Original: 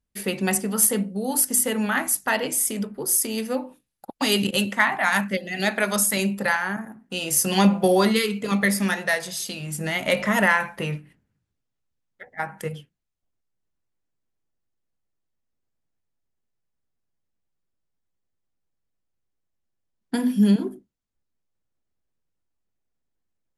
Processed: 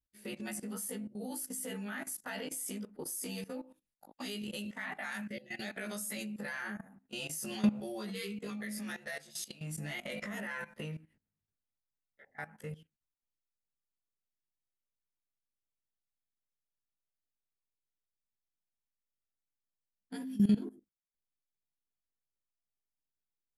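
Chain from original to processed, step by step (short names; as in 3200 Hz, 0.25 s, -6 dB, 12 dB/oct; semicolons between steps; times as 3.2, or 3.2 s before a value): short-time reversal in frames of 39 ms; dynamic EQ 960 Hz, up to -7 dB, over -41 dBFS, Q 2; level quantiser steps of 17 dB; gain -6 dB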